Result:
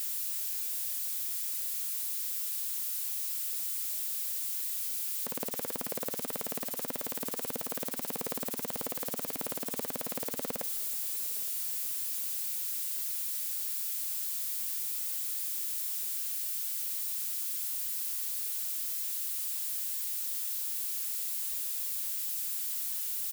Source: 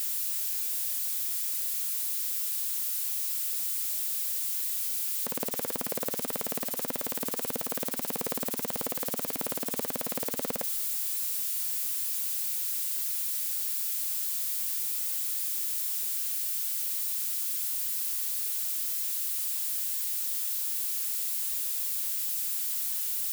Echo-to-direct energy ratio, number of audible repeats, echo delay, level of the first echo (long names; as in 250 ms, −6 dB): −21.0 dB, 3, 866 ms, −22.5 dB